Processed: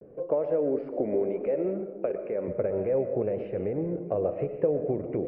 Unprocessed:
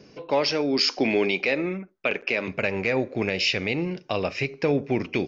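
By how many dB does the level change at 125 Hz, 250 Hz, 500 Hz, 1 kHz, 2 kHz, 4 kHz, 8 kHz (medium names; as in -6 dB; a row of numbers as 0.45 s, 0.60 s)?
-4.5 dB, -5.0 dB, 0.0 dB, -9.0 dB, -26.5 dB, under -40 dB, no reading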